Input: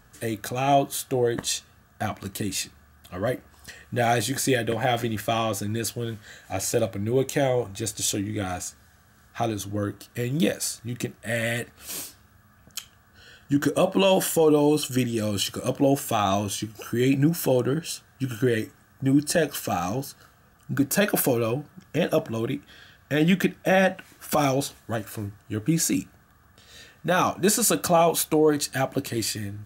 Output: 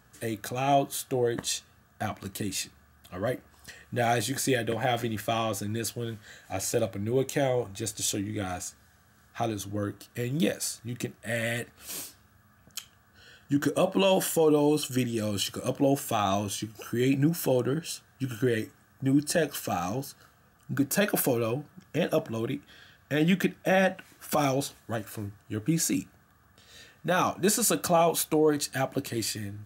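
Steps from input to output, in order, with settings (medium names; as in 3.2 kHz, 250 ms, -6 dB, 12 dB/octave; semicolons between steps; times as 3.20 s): high-pass 62 Hz; trim -3.5 dB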